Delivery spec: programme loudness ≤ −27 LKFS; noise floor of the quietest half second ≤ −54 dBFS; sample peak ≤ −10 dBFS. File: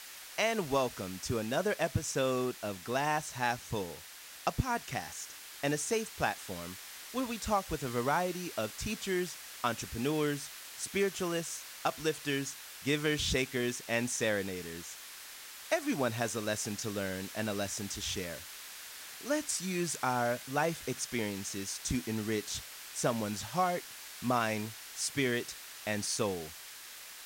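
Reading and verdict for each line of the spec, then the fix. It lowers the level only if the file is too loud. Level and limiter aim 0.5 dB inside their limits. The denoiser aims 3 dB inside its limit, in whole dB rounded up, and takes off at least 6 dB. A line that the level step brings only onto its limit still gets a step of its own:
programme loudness −34.5 LKFS: in spec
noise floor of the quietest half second −50 dBFS: out of spec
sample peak −15.5 dBFS: in spec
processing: broadband denoise 7 dB, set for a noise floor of −50 dBFS

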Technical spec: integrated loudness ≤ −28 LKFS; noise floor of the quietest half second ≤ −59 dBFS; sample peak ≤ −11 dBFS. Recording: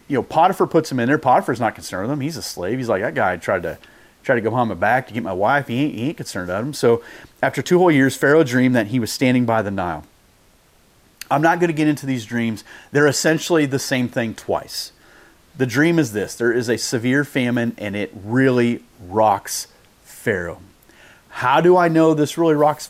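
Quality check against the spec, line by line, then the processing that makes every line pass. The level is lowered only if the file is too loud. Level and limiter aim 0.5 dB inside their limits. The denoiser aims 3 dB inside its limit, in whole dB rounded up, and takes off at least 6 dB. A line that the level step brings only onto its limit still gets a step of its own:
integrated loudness −19.0 LKFS: out of spec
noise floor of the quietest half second −54 dBFS: out of spec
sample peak −4.5 dBFS: out of spec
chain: level −9.5 dB

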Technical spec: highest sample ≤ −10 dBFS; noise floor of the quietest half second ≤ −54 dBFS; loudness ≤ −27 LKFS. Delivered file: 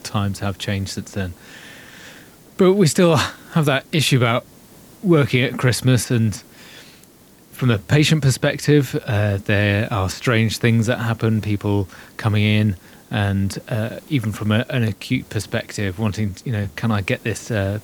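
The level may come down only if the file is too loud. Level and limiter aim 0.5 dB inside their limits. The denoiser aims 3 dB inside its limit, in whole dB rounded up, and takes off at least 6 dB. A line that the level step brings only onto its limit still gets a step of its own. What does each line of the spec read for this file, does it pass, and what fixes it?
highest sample −3.5 dBFS: out of spec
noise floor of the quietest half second −48 dBFS: out of spec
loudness −19.5 LKFS: out of spec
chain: level −8 dB

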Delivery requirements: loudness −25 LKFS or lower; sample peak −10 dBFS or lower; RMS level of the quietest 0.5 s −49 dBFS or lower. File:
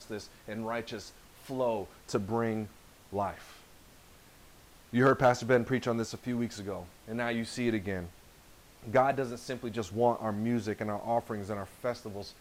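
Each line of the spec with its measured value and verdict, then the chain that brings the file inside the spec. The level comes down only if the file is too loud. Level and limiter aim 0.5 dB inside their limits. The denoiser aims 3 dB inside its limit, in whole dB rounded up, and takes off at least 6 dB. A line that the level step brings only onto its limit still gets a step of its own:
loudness −32.5 LKFS: in spec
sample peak −14.5 dBFS: in spec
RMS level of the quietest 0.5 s −57 dBFS: in spec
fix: no processing needed

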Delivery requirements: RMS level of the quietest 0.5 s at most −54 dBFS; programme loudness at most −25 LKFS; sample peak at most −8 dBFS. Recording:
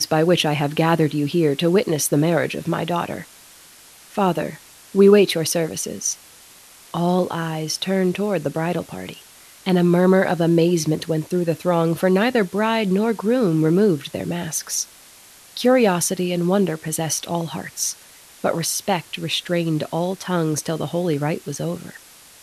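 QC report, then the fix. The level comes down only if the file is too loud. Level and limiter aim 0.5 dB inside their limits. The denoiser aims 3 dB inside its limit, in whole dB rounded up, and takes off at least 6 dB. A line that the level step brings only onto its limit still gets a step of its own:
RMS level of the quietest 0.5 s −47 dBFS: out of spec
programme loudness −20.5 LKFS: out of spec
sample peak −3.5 dBFS: out of spec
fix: broadband denoise 6 dB, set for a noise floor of −47 dBFS
level −5 dB

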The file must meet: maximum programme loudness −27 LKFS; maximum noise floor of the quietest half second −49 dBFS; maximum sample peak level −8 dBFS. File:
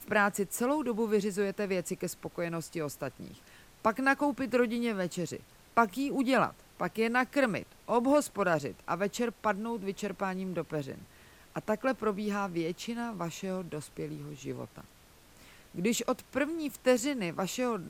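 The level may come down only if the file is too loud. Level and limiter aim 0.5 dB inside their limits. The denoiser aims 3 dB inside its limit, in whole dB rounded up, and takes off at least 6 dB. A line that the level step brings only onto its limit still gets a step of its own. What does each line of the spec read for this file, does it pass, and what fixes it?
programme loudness −32.0 LKFS: in spec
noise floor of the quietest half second −58 dBFS: in spec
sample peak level −10.5 dBFS: in spec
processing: no processing needed

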